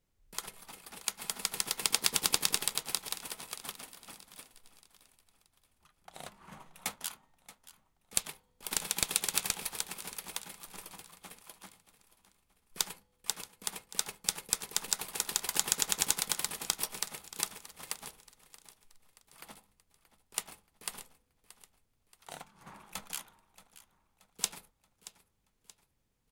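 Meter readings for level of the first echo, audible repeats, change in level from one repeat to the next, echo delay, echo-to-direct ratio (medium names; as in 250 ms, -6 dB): -17.0 dB, 3, -6.5 dB, 628 ms, -16.0 dB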